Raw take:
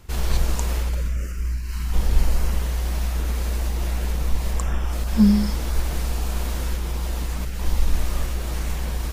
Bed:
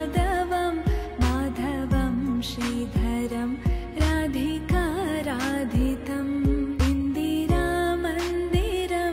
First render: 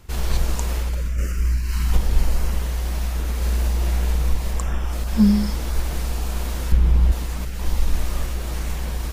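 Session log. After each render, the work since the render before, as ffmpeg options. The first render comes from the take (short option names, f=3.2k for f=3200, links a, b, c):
-filter_complex "[0:a]asettb=1/sr,asplit=3[a][b][c];[a]atrim=end=1.184[d];[b]atrim=start=1.18:end=1.97,asetpts=PTS-STARTPTS,afade=t=in:d=0.004:c=qsin,afade=t=out:st=0.786:d=0.004:c=qsin,acontrast=30[e];[c]atrim=start=1.966[f];[d][e]acrossfade=d=0.004:c1=hsin:c2=qsin[g];[g][f]acrossfade=d=0.004:c1=qsin:c2=hsin,asettb=1/sr,asplit=3[h][i][j];[h]atrim=end=3.374[k];[i]atrim=start=3.37:end=4.34,asetpts=PTS-STARTPTS,afade=t=in:d=0.004:c=qsin,afade=t=out:st=0.966:d=0.004:c=qsin,asplit=2[l][m];[m]adelay=49,volume=-4dB[n];[l][n]amix=inputs=2:normalize=0,atrim=end_sample=42777[o];[j]atrim=start=4.336[p];[k][o]acrossfade=d=0.004:c1=hsin:c2=qsin[q];[q][p]acrossfade=d=0.004:c1=qsin:c2=hsin,asettb=1/sr,asplit=3[r][s][t];[r]atrim=end=6.724[u];[s]atrim=start=6.72:end=7.12,asetpts=PTS-STARTPTS,afade=t=in:d=0.004:c=qsin,afade=t=out:st=0.396:d=0.004:c=qsin,bass=f=250:g=11,treble=f=4k:g=-8[v];[t]atrim=start=7.116[w];[u][v]acrossfade=d=0.004:c1=hsin:c2=qsin[x];[x][w]acrossfade=d=0.004:c1=qsin:c2=hsin"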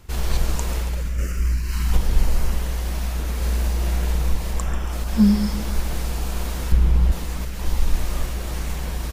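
-af "aecho=1:1:139|278|417|556|695:0.237|0.121|0.0617|0.0315|0.016"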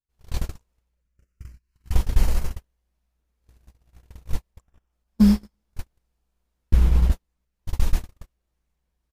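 -af "agate=range=-50dB:threshold=-15dB:ratio=16:detection=peak"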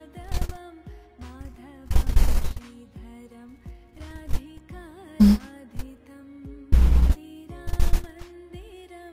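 -filter_complex "[1:a]volume=-18.5dB[a];[0:a][a]amix=inputs=2:normalize=0"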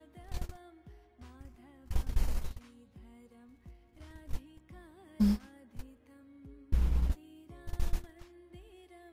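-af "volume=-11.5dB"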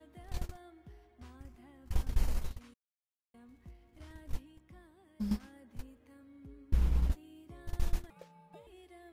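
-filter_complex "[0:a]asettb=1/sr,asplit=3[a][b][c];[a]atrim=end=8.104[d];[b]atrim=start=8.1:end=8.67,asetpts=PTS-STARTPTS,afade=t=in:d=0.004:c=qsin,afade=t=out:st=0.566:d=0.004:c=qsin,aeval=exprs='val(0)*sin(2*PI*520*n/s)':c=same[e];[c]atrim=start=8.666[f];[d][e]acrossfade=d=0.004:c1=hsin:c2=qsin[g];[g][f]acrossfade=d=0.004:c1=qsin:c2=hsin,asplit=4[h][i][j][k];[h]atrim=end=2.74,asetpts=PTS-STARTPTS,afade=t=out:st=2.736:d=0.004:c=hsin[l];[i]atrim=start=2.74:end=3.34,asetpts=PTS-STARTPTS,volume=0[m];[j]atrim=start=3.34:end=5.31,asetpts=PTS-STARTPTS,afade=t=in:d=0.004:c=hsin,afade=t=out:st=0.9:d=1.07:silence=0.266073[n];[k]atrim=start=5.31,asetpts=PTS-STARTPTS,afade=t=in:d=0.004:c=hsin:silence=0.266073[o];[l][m][n][o]concat=n=4:v=0:a=1"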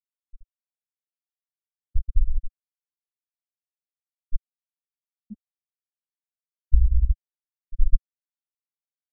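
-af "afftfilt=real='re*gte(hypot(re,im),0.398)':imag='im*gte(hypot(re,im),0.398)':win_size=1024:overlap=0.75,asubboost=boost=5.5:cutoff=76"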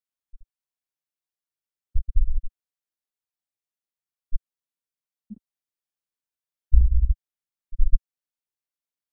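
-filter_complex "[0:a]asettb=1/sr,asplit=3[a][b][c];[a]atrim=end=5.334[d];[b]atrim=start=5.33:end=6.81,asetpts=PTS-STARTPTS,afade=t=in:d=0.004:c=qsin,afade=t=out:st=1.476:d=0.004:c=qsin,asplit=2[e][f];[f]adelay=34,volume=-5.5dB[g];[e][g]amix=inputs=2:normalize=0,atrim=end_sample=65268[h];[c]atrim=start=6.806[i];[d][h]acrossfade=d=0.004:c1=hsin:c2=qsin[j];[j][i]acrossfade=d=0.004:c1=qsin:c2=hsin"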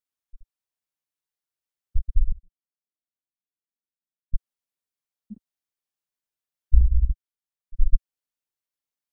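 -filter_complex "[0:a]asettb=1/sr,asplit=3[a][b][c];[a]atrim=end=2.324[d];[b]atrim=start=2.32:end=4.34,asetpts=PTS-STARTPTS,afade=t=in:d=0.004:c=qsin,afade=t=out:st=2.016:d=0.004:c=qsin,bandpass=f=220:t=q:w=1.5[e];[c]atrim=start=4.336[f];[d][e]acrossfade=d=0.004:c1=hsin:c2=qsin[g];[g][f]acrossfade=d=0.004:c1=qsin:c2=hsin,asplit=3[h][i][j];[h]atrim=end=7.102[k];[i]atrim=start=7.098:end=7.752,asetpts=PTS-STARTPTS,volume=-4.5dB[l];[j]atrim=start=7.748[m];[k][l]acrossfade=d=0.004:c1=hsin:c2=hsin[n];[n][m]acrossfade=d=0.004:c1=hsin:c2=hsin"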